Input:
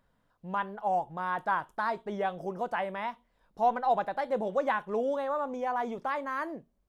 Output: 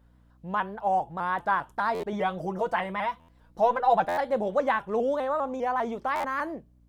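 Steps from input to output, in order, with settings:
0:02.12–0:04.06: comb filter 6.1 ms, depth 69%
mains hum 60 Hz, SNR 31 dB
buffer that repeats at 0:01.94/0:03.19/0:04.08/0:06.15, samples 512, times 7
pitch modulation by a square or saw wave saw up 5 Hz, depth 100 cents
level +3.5 dB

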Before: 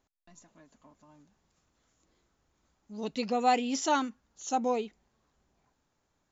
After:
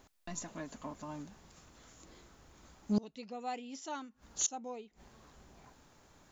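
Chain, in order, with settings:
gate with flip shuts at −34 dBFS, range −29 dB
level +14.5 dB

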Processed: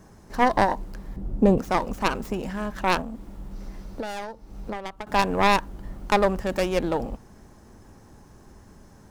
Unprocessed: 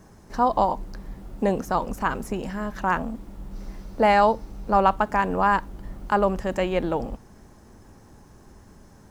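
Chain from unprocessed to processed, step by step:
stylus tracing distortion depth 0.4 ms
0:01.16–0:01.58: tilt shelving filter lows +9 dB, about 690 Hz
0:03.00–0:05.07: downward compressor 20 to 1, threshold −30 dBFS, peak gain reduction 19 dB

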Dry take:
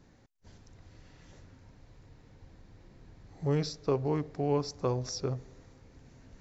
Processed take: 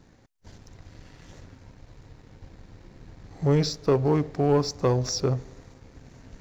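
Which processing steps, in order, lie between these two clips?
leveller curve on the samples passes 1
level +5 dB

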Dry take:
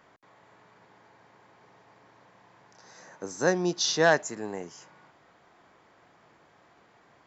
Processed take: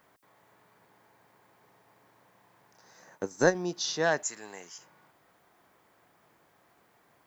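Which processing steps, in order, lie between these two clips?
0:03.02–0:03.55: transient designer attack +11 dB, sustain −8 dB
0:04.23–0:04.78: tilt shelving filter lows −10 dB
background noise blue −70 dBFS
level −5.5 dB

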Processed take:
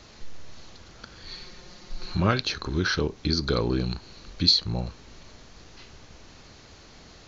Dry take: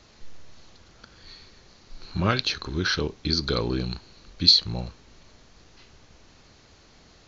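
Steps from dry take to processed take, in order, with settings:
dynamic equaliser 3,400 Hz, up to −5 dB, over −40 dBFS, Q 0.8
in parallel at −2.5 dB: downward compressor, threshold −36 dBFS, peak gain reduction 18.5 dB
0:01.31–0:02.15: on the sum: comb filter 5.6 ms, depth 65%

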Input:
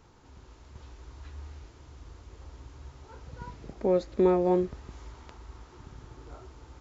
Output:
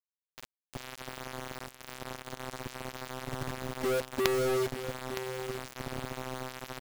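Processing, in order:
noise gate with hold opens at −42 dBFS
low-pass filter 1,400 Hz 6 dB per octave
in parallel at −2 dB: downward compressor 20 to 1, threshold −39 dBFS, peak gain reduction 21.5 dB
on the sum: phases set to zero 129 Hz
log-companded quantiser 2 bits
on a send: single-tap delay 915 ms −11.5 dB
on the sum: level −3 dB

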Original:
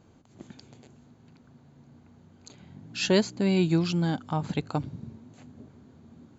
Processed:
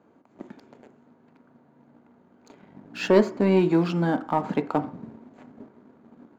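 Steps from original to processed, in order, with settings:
three-way crossover with the lows and the highs turned down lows −23 dB, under 210 Hz, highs −18 dB, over 2,100 Hz
leveller curve on the samples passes 1
on a send: convolution reverb RT60 0.50 s, pre-delay 3 ms, DRR 9.5 dB
on the sum: level +4.5 dB

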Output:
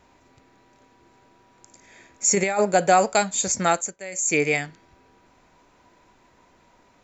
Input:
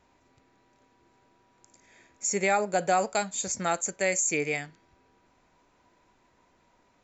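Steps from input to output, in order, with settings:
0:02.27–0:02.72: compressor whose output falls as the input rises −27 dBFS, ratio −0.5
0:03.70–0:04.37: duck −17 dB, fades 0.26 s
level +7.5 dB

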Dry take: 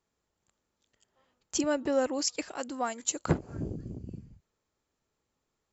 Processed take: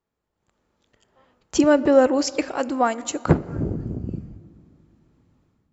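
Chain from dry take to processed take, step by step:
low-pass filter 1,900 Hz 6 dB per octave
automatic gain control gain up to 13 dB
on a send: convolution reverb RT60 2.4 s, pre-delay 7 ms, DRR 17 dB

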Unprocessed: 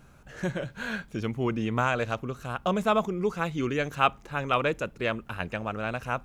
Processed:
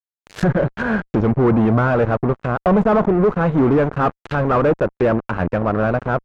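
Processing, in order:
fuzz pedal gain 33 dB, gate −39 dBFS
dynamic equaliser 3,100 Hz, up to −6 dB, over −36 dBFS, Q 0.74
treble cut that deepens with the level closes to 1,400 Hz, closed at −19.5 dBFS
level +2.5 dB

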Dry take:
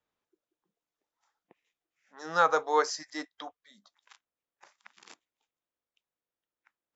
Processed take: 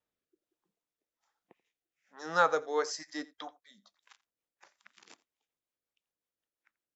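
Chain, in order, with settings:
tape wow and flutter 26 cents
rotating-speaker cabinet horn 1.2 Hz, later 5.5 Hz, at 0:02.91
single-tap delay 85 ms −22 dB

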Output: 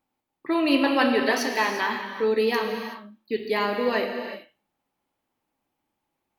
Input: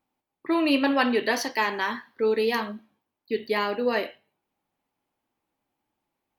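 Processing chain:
reverb whose tail is shaped and stops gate 400 ms flat, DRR 4 dB

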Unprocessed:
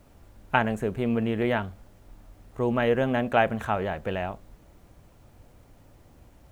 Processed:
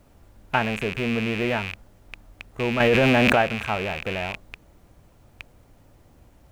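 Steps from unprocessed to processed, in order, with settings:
loose part that buzzes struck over −43 dBFS, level −18 dBFS
0:02.80–0:03.42: envelope flattener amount 100%

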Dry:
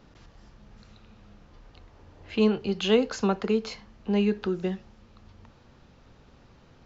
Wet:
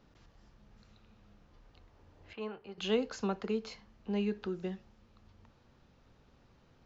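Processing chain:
0:02.33–0:02.78: three-way crossover with the lows and the highs turned down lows −14 dB, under 560 Hz, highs −16 dB, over 2,300 Hz
level −9 dB

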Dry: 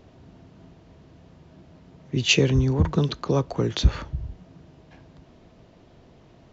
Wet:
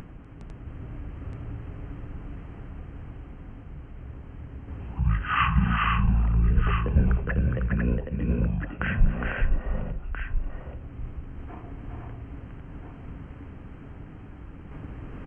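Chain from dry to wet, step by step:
upward compression, threshold −26 dBFS
sample-and-hold tremolo 3.5 Hz
multi-tap delay 105/176/214/569 ms −19/−4/−4.5/−8 dB
wrong playback speed 78 rpm record played at 33 rpm

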